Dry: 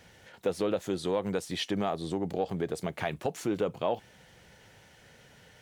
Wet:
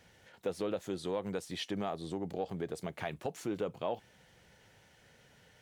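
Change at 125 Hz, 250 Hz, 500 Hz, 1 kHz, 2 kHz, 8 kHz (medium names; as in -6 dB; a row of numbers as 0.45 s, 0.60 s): -6.0 dB, -6.0 dB, -6.0 dB, -6.0 dB, -6.0 dB, -6.0 dB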